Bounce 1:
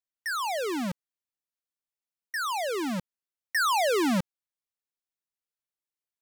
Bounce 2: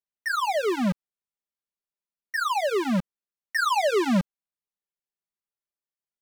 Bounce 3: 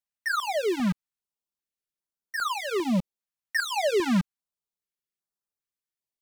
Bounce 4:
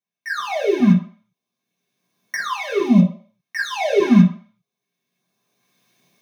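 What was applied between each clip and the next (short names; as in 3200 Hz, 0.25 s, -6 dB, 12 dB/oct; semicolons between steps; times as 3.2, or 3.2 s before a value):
high shelf 2000 Hz -8 dB; sample leveller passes 2; comb 5 ms, depth 86%
stepped notch 2.5 Hz 400–2600 Hz
recorder AGC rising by 18 dB/s; reverb RT60 0.45 s, pre-delay 3 ms, DRR -7 dB; gain -8 dB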